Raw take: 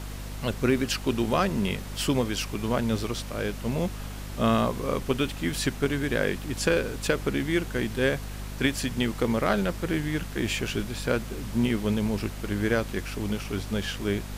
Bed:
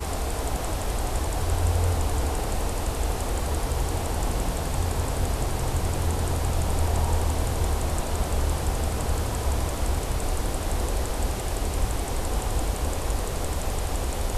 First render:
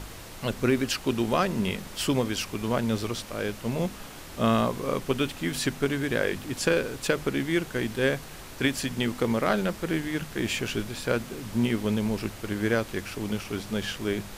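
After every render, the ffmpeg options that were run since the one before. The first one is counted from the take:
ffmpeg -i in.wav -af "bandreject=frequency=50:width_type=h:width=4,bandreject=frequency=100:width_type=h:width=4,bandreject=frequency=150:width_type=h:width=4,bandreject=frequency=200:width_type=h:width=4,bandreject=frequency=250:width_type=h:width=4" out.wav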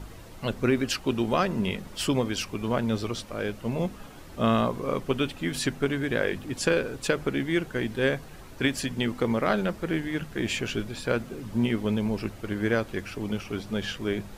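ffmpeg -i in.wav -af "afftdn=noise_reduction=9:noise_floor=-43" out.wav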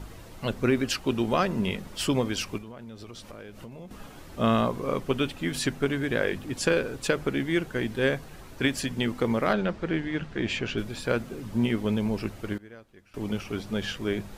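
ffmpeg -i in.wav -filter_complex "[0:a]asettb=1/sr,asplit=3[link_01][link_02][link_03];[link_01]atrim=end=2.584[link_04];[link_02]atrim=start=2.58:end=3.91,asetpts=PTS-STARTPTS,afade=type=in:duration=0.004:curve=qsin,afade=type=out:start_time=1.326:duration=0.004:curve=qsin,acompressor=threshold=-38dB:ratio=20:attack=3.2:release=140:knee=1:detection=peak[link_05];[link_03]atrim=start=3.906[link_06];[link_04][link_05]acrossfade=duration=0.004:curve1=hsin:curve2=qsin[link_07];[link_07][link_06]acrossfade=duration=0.004:curve1=qsin:curve2=hsin,asettb=1/sr,asplit=3[link_08][link_09][link_10];[link_08]atrim=end=9.534[link_11];[link_09]atrim=start=9.53:end=10.78,asetpts=PTS-STARTPTS,afade=type=in:duration=0.004:curve=qsin,afade=type=out:start_time=1.246:duration=0.004:curve=qsin,lowpass=4800[link_12];[link_10]atrim=start=10.776[link_13];[link_11][link_12]acrossfade=duration=0.004:curve1=hsin:curve2=qsin[link_14];[link_14][link_13]acrossfade=duration=0.004:curve1=qsin:curve2=hsin,asplit=3[link_15][link_16][link_17];[link_15]atrim=end=12.58,asetpts=PTS-STARTPTS,afade=type=out:start_time=12.43:duration=0.15:curve=log:silence=0.0794328[link_18];[link_16]atrim=start=12.58:end=13.14,asetpts=PTS-STARTPTS,volume=-22dB[link_19];[link_17]atrim=start=13.14,asetpts=PTS-STARTPTS,afade=type=in:duration=0.15:curve=log:silence=0.0794328[link_20];[link_18][link_19][link_20]concat=n=3:v=0:a=1" out.wav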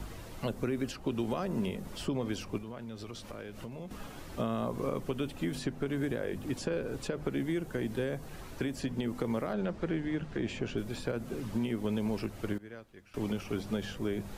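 ffmpeg -i in.wav -filter_complex "[0:a]alimiter=limit=-19.5dB:level=0:latency=1:release=186,acrossover=split=210|1000|6500[link_01][link_02][link_03][link_04];[link_01]acompressor=threshold=-37dB:ratio=4[link_05];[link_02]acompressor=threshold=-31dB:ratio=4[link_06];[link_03]acompressor=threshold=-46dB:ratio=4[link_07];[link_04]acompressor=threshold=-55dB:ratio=4[link_08];[link_05][link_06][link_07][link_08]amix=inputs=4:normalize=0" out.wav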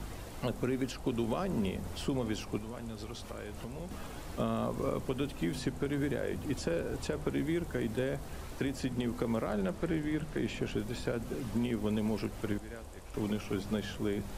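ffmpeg -i in.wav -i bed.wav -filter_complex "[1:a]volume=-22dB[link_01];[0:a][link_01]amix=inputs=2:normalize=0" out.wav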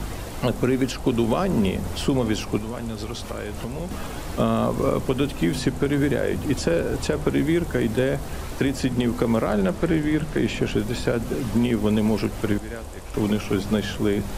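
ffmpeg -i in.wav -af "volume=11.5dB" out.wav

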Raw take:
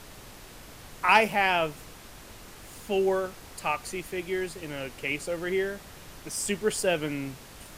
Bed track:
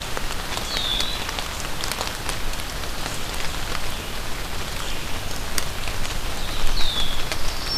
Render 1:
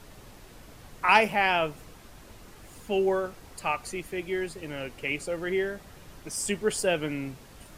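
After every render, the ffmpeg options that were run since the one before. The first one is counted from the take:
ffmpeg -i in.wav -af "afftdn=noise_reduction=6:noise_floor=-47" out.wav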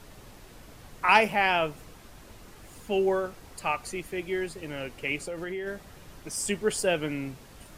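ffmpeg -i in.wav -filter_complex "[0:a]asplit=3[link_01][link_02][link_03];[link_01]afade=type=out:start_time=5.2:duration=0.02[link_04];[link_02]acompressor=threshold=-31dB:ratio=5:attack=3.2:release=140:knee=1:detection=peak,afade=type=in:start_time=5.2:duration=0.02,afade=type=out:start_time=5.66:duration=0.02[link_05];[link_03]afade=type=in:start_time=5.66:duration=0.02[link_06];[link_04][link_05][link_06]amix=inputs=3:normalize=0" out.wav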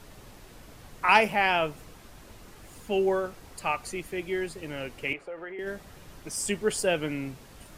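ffmpeg -i in.wav -filter_complex "[0:a]asettb=1/sr,asplit=3[link_01][link_02][link_03];[link_01]atrim=end=5.134[link_04];[link_02]atrim=start=5.13:end=5.59,asetpts=PTS-STARTPTS,afade=type=in:duration=0.004:curve=qsin,afade=type=out:start_time=0.456:duration=0.004:curve=qsin,acrossover=split=400 2500:gain=0.178 1 0.0631[link_05][link_06][link_07];[link_05][link_06][link_07]amix=inputs=3:normalize=0[link_08];[link_03]atrim=start=5.586[link_09];[link_04][link_08]acrossfade=duration=0.004:curve1=hsin:curve2=qsin[link_10];[link_10][link_09]acrossfade=duration=0.004:curve1=qsin:curve2=hsin" out.wav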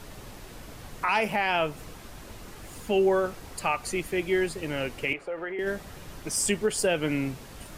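ffmpeg -i in.wav -af "acontrast=31,alimiter=limit=-15dB:level=0:latency=1:release=213" out.wav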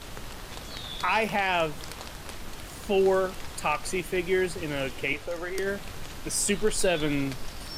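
ffmpeg -i in.wav -i bed.wav -filter_complex "[1:a]volume=-15dB[link_01];[0:a][link_01]amix=inputs=2:normalize=0" out.wav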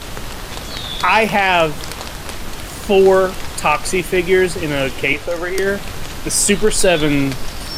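ffmpeg -i in.wav -af "volume=12dB,alimiter=limit=-2dB:level=0:latency=1" out.wav

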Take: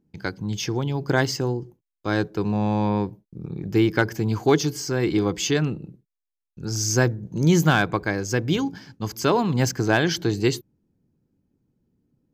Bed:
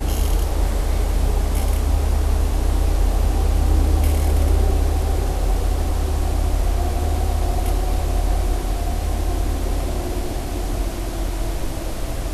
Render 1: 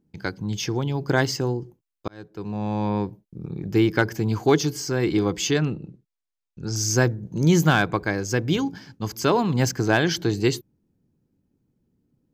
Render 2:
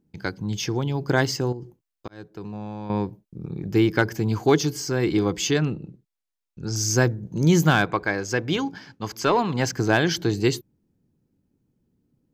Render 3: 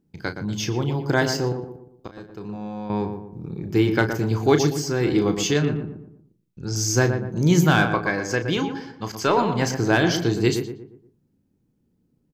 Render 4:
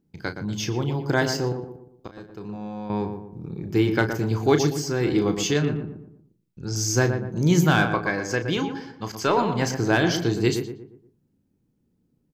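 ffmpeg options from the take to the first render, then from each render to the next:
ffmpeg -i in.wav -filter_complex "[0:a]asettb=1/sr,asplit=3[link_01][link_02][link_03];[link_01]atrim=end=5.584[link_04];[link_02]atrim=start=5.58:end=6.76,asetpts=PTS-STARTPTS,afade=type=in:duration=0.004:curve=qsin,afade=type=out:start_time=1.176:duration=0.004:curve=qsin,lowpass=7500[link_05];[link_03]atrim=start=6.756[link_06];[link_04][link_05]acrossfade=duration=0.004:curve1=hsin:curve2=qsin[link_07];[link_07][link_06]acrossfade=duration=0.004:curve1=qsin:curve2=hsin,asplit=2[link_08][link_09];[link_08]atrim=end=2.08,asetpts=PTS-STARTPTS,afade=type=out:start_time=2.076:duration=0.004:curve=hsin[link_10];[link_09]atrim=start=2.08,asetpts=PTS-STARTPTS,afade=type=in:duration=1.37:curve=qsin[link_11];[link_10][link_11]concat=n=2:v=0:a=1" out.wav
ffmpeg -i in.wav -filter_complex "[0:a]asettb=1/sr,asplit=3[link_01][link_02][link_03];[link_01]atrim=end=1.524[link_04];[link_02]atrim=start=1.52:end=2.9,asetpts=PTS-STARTPTS,afade=type=in:duration=0.004:curve=qsin,afade=type=out:start_time=1.376:duration=0.004:curve=qsin,acompressor=threshold=-30dB:ratio=6:attack=3.2:release=140:knee=1:detection=peak[link_05];[link_03]atrim=start=2.896[link_06];[link_04][link_05]acrossfade=duration=0.004:curve1=hsin:curve2=qsin[link_07];[link_07][link_06]acrossfade=duration=0.004:curve1=qsin:curve2=hsin,asettb=1/sr,asplit=3[link_08][link_09][link_10];[link_08]atrim=end=7.854[link_11];[link_09]atrim=start=7.85:end=9.73,asetpts=PTS-STARTPTS,afade=type=in:duration=0.004:curve=qsin,afade=type=out:start_time=1.876:duration=0.004:curve=qsin,asplit=2[link_12][link_13];[link_13]highpass=frequency=720:poles=1,volume=8dB,asoftclip=type=tanh:threshold=-7.5dB[link_14];[link_12][link_14]amix=inputs=2:normalize=0,lowpass=frequency=3200:poles=1,volume=-6dB[link_15];[link_10]atrim=start=9.726[link_16];[link_11][link_15]acrossfade=duration=0.004:curve1=hsin:curve2=qsin[link_17];[link_17][link_16]acrossfade=duration=0.004:curve1=qsin:curve2=hsin" out.wav
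ffmpeg -i in.wav -filter_complex "[0:a]asplit=2[link_01][link_02];[link_02]adelay=34,volume=-9.5dB[link_03];[link_01][link_03]amix=inputs=2:normalize=0,asplit=2[link_04][link_05];[link_05]adelay=118,lowpass=frequency=1400:poles=1,volume=-6.5dB,asplit=2[link_06][link_07];[link_07]adelay=118,lowpass=frequency=1400:poles=1,volume=0.43,asplit=2[link_08][link_09];[link_09]adelay=118,lowpass=frequency=1400:poles=1,volume=0.43,asplit=2[link_10][link_11];[link_11]adelay=118,lowpass=frequency=1400:poles=1,volume=0.43,asplit=2[link_12][link_13];[link_13]adelay=118,lowpass=frequency=1400:poles=1,volume=0.43[link_14];[link_06][link_08][link_10][link_12][link_14]amix=inputs=5:normalize=0[link_15];[link_04][link_15]amix=inputs=2:normalize=0" out.wav
ffmpeg -i in.wav -af "volume=-1.5dB" out.wav

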